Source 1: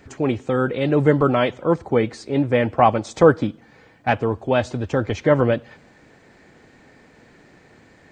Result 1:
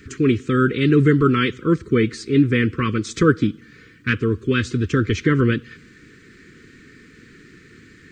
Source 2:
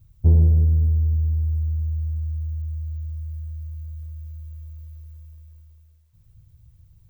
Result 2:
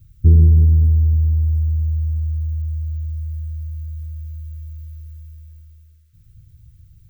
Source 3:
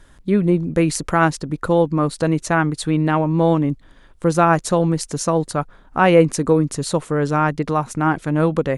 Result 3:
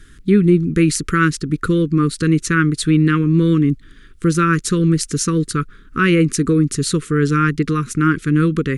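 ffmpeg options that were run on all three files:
-filter_complex "[0:a]asplit=2[a][b];[b]alimiter=limit=-9dB:level=0:latency=1:release=311,volume=1.5dB[c];[a][c]amix=inputs=2:normalize=0,asuperstop=centerf=730:order=8:qfactor=0.91,volume=-1.5dB"

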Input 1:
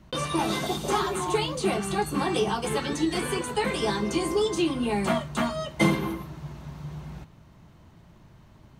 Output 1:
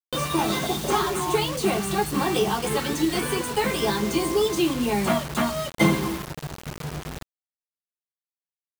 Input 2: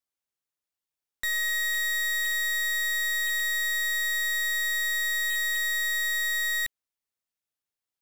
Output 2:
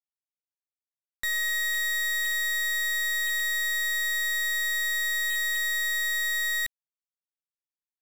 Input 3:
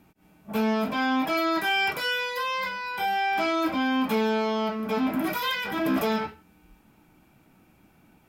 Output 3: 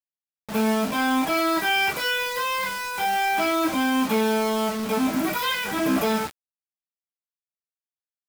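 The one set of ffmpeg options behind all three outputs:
-af "acrusher=bits=5:mix=0:aa=0.000001,volume=2.5dB"

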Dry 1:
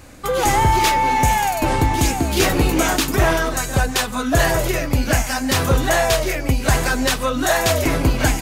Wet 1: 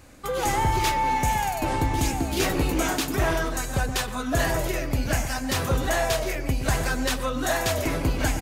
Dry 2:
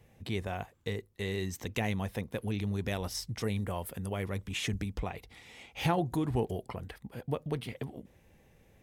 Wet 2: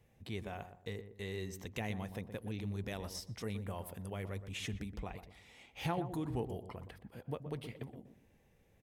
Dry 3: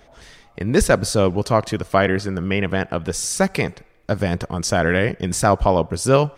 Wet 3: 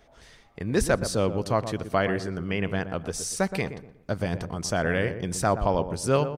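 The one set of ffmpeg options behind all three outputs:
-filter_complex "[0:a]asplit=2[a][b];[b]adelay=121,lowpass=f=1k:p=1,volume=-9dB,asplit=2[c][d];[d]adelay=121,lowpass=f=1k:p=1,volume=0.35,asplit=2[e][f];[f]adelay=121,lowpass=f=1k:p=1,volume=0.35,asplit=2[g][h];[h]adelay=121,lowpass=f=1k:p=1,volume=0.35[i];[a][c][e][g][i]amix=inputs=5:normalize=0,volume=-7.5dB"

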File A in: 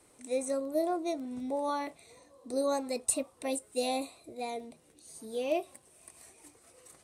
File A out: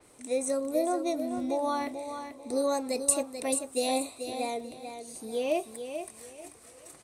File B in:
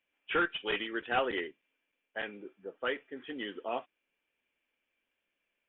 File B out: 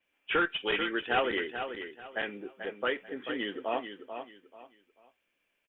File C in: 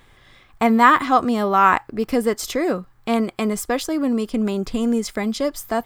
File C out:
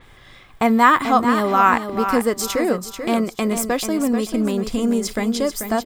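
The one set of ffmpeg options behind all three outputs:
-filter_complex "[0:a]asplit=2[a][b];[b]acompressor=threshold=-33dB:ratio=6,volume=-1dB[c];[a][c]amix=inputs=2:normalize=0,aecho=1:1:438|876|1314:0.376|0.105|0.0295,adynamicequalizer=threshold=0.01:dfrequency=5600:dqfactor=0.7:tfrequency=5600:tqfactor=0.7:attack=5:release=100:ratio=0.375:range=2:mode=boostabove:tftype=highshelf,volume=-1dB"

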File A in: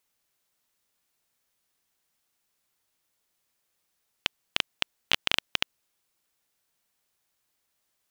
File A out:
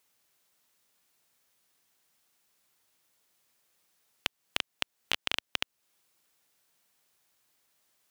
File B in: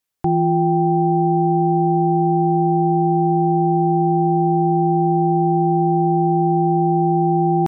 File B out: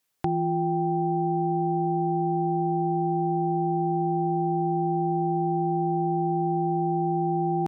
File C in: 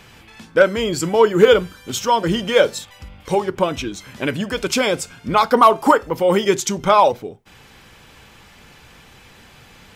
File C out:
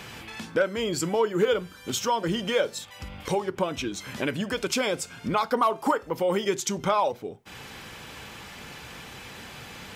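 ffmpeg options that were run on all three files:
-af "highpass=f=96:p=1,acompressor=threshold=-38dB:ratio=2,volume=4.5dB"

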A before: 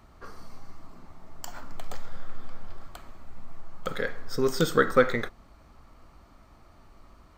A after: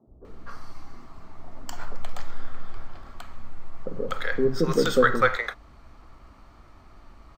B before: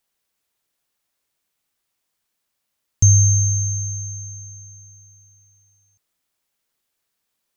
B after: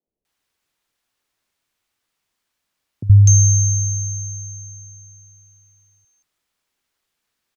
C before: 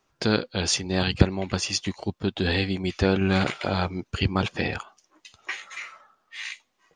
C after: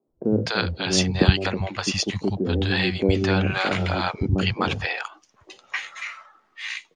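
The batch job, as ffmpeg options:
-filter_complex "[0:a]highshelf=f=7.1k:g=-9.5,acrossover=split=170|570[a][b][c];[a]adelay=70[d];[c]adelay=250[e];[d][b][e]amix=inputs=3:normalize=0,volume=4.5dB"

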